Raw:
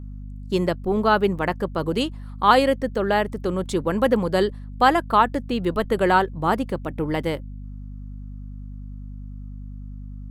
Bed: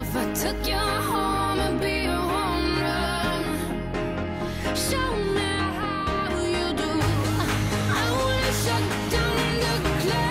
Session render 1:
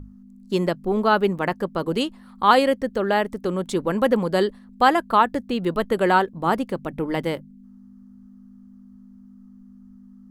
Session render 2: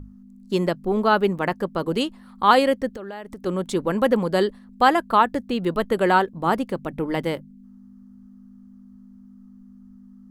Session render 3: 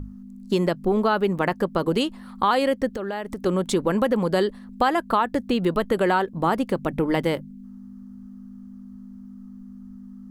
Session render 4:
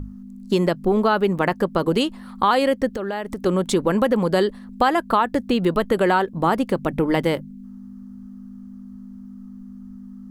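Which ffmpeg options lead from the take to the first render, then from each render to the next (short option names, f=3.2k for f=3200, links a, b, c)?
-af "bandreject=f=50:t=h:w=6,bandreject=f=100:t=h:w=6,bandreject=f=150:t=h:w=6"
-filter_complex "[0:a]asplit=3[a][b][c];[a]afade=t=out:st=2.91:d=0.02[d];[b]acompressor=threshold=-31dB:ratio=10:attack=3.2:release=140:knee=1:detection=peak,afade=t=in:st=2.91:d=0.02,afade=t=out:st=3.45:d=0.02[e];[c]afade=t=in:st=3.45:d=0.02[f];[d][e][f]amix=inputs=3:normalize=0"
-filter_complex "[0:a]asplit=2[a][b];[b]alimiter=limit=-13dB:level=0:latency=1,volume=-1dB[c];[a][c]amix=inputs=2:normalize=0,acompressor=threshold=-19dB:ratio=3"
-af "volume=2.5dB"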